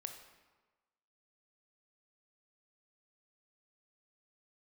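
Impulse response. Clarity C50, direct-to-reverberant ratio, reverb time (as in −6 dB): 7.5 dB, 5.5 dB, 1.3 s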